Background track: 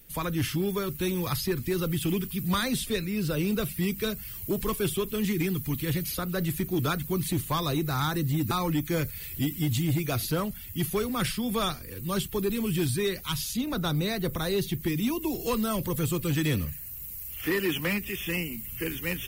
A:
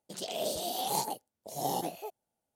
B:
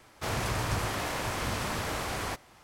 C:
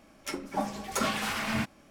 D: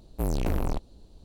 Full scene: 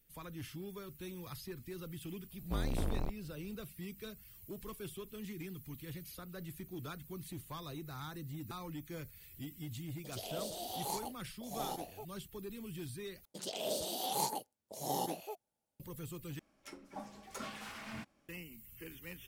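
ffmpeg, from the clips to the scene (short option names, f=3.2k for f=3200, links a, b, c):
-filter_complex "[1:a]asplit=2[a][b];[0:a]volume=-17.5dB[c];[4:a]bass=f=250:g=1,treble=f=4k:g=-8[d];[b]bandreject=f=700:w=12[e];[c]asplit=3[f][g][h];[f]atrim=end=13.254[i];[e]atrim=end=2.55,asetpts=PTS-STARTPTS,volume=-3dB[j];[g]atrim=start=15.796:end=16.394[k];[3:a]atrim=end=1.9,asetpts=PTS-STARTPTS,volume=-15.5dB[l];[h]atrim=start=18.286[m];[d]atrim=end=1.24,asetpts=PTS-STARTPTS,volume=-9dB,afade=t=in:d=0.004:c=hsin,afade=t=out:st=1.236:d=0.004:c=hsin,adelay=2320[n];[a]atrim=end=2.55,asetpts=PTS-STARTPTS,volume=-8dB,afade=t=in:d=0.004:c=hsin,afade=t=out:st=2.546:d=0.004:c=hsin,adelay=9950[o];[i][j]acrossfade=d=0.004:c1=hsin:c2=hsin[p];[p][k]acrossfade=d=0.004:c1=hsin:c2=hsin[q];[q][l]acrossfade=d=0.004:c1=hsin:c2=hsin[r];[r][m]acrossfade=d=0.004:c1=hsin:c2=hsin[s];[s][n][o]amix=inputs=3:normalize=0"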